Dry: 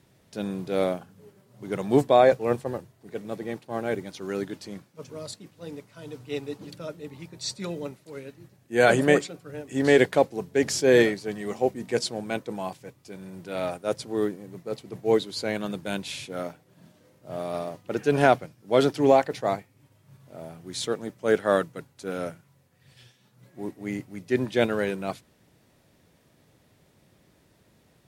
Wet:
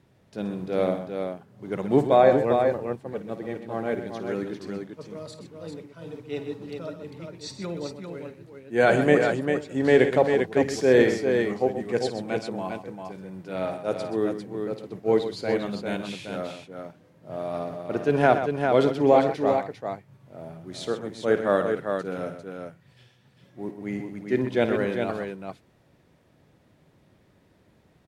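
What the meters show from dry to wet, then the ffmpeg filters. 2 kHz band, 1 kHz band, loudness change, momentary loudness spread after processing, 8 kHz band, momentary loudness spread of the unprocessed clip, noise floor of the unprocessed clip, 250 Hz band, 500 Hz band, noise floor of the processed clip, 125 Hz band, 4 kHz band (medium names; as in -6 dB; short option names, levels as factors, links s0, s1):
-0.5 dB, +1.0 dB, +0.5 dB, 20 LU, -7.5 dB, 21 LU, -63 dBFS, +1.5 dB, +1.5 dB, -61 dBFS, +1.5 dB, -4.0 dB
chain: -af "highshelf=f=4200:g=-12,aecho=1:1:54|127|398:0.237|0.299|0.531"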